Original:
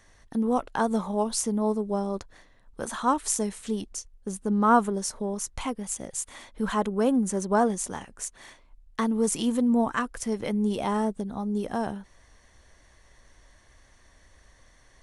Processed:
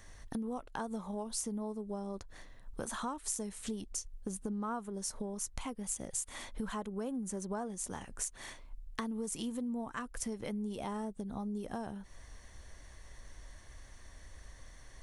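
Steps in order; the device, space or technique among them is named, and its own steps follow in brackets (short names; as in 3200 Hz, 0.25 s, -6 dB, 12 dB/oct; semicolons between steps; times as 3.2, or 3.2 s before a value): ASMR close-microphone chain (low shelf 120 Hz +7 dB; compressor 6:1, threshold -37 dBFS, peak gain reduction 21 dB; high shelf 7900 Hz +6 dB)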